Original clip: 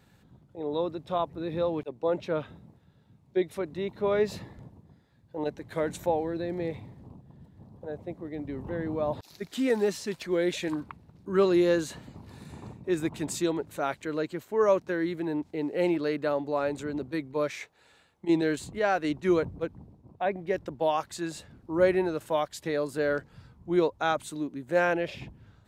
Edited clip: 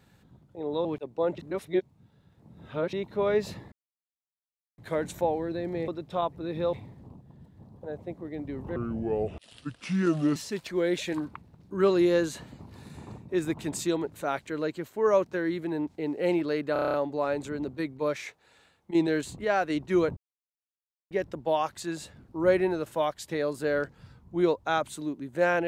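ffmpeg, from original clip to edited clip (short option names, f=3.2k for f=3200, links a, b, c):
-filter_complex "[0:a]asplit=19[a][b][c][d][e][f][g][h][i][j][k][l][m][n][o][p][q][r][s];[a]atrim=end=0.852[t];[b]atrim=start=1.698:end=2.232[u];[c]atrim=start=2.228:end=3.782,asetpts=PTS-STARTPTS,areverse[v];[d]atrim=start=3.778:end=4.57,asetpts=PTS-STARTPTS,afade=t=out:st=0.788:d=0.004:c=hsin[w];[e]atrim=start=4.57:end=5.63,asetpts=PTS-STARTPTS,volume=0[x];[f]atrim=start=5.63:end=6.732,asetpts=PTS-STARTPTS,afade=t=in:d=0.004:c=hsin[y];[g]atrim=start=0.848:end=1.702[z];[h]atrim=start=6.728:end=8.764[aa];[i]atrim=start=8.76:end=9.91,asetpts=PTS-STARTPTS,asetrate=31752,aresample=44100[ab];[j]atrim=start=9.906:end=16.312[ac];[k]atrim=start=16.278:end=16.312[ad];[l]atrim=start=16.278:end=16.312[ae];[m]atrim=start=16.278:end=16.312[af];[n]atrim=start=16.278:end=16.312[ag];[o]atrim=start=16.278:end=16.312[ah];[p]atrim=start=16.278:end=16.312[ai];[q]atrim=start=16.278:end=19.51,asetpts=PTS-STARTPTS,afade=t=out:st=3.228:d=0.004:c=hsin[aj];[r]atrim=start=19.51:end=20.45,asetpts=PTS-STARTPTS,volume=0[ak];[s]atrim=start=20.45,asetpts=PTS-STARTPTS,afade=t=in:d=0.004:c=hsin[al];[t][u]acrossfade=d=0.004:c1=hsin:c2=hsin[am];[am][v]acrossfade=d=0.004:c1=hsin:c2=hsin[an];[w][x][y]concat=n=3:v=0:a=1[ao];[an][ao]acrossfade=d=0.004:c1=hsin:c2=hsin[ap];[ap][z]acrossfade=d=0.004:c1=hsin:c2=hsin[aq];[aq][aa]acrossfade=d=0.004:c1=hsin:c2=hsin[ar];[ar][ab]acrossfade=d=0.004:c1=hsin:c2=hsin[as];[as][ac]acrossfade=d=0.004:c1=hsin:c2=hsin[at];[at][ad]acrossfade=d=0.004:c1=hsin:c2=hsin[au];[au][ae]acrossfade=d=0.004:c1=hsin:c2=hsin[av];[av][af]acrossfade=d=0.004:c1=hsin:c2=hsin[aw];[aw][ag]acrossfade=d=0.004:c1=hsin:c2=hsin[ax];[ax][ah]acrossfade=d=0.004:c1=hsin:c2=hsin[ay];[ay][ai]acrossfade=d=0.004:c1=hsin:c2=hsin[az];[aj][ak][al]concat=n=3:v=0:a=1[ba];[az][ba]acrossfade=d=0.004:c1=hsin:c2=hsin"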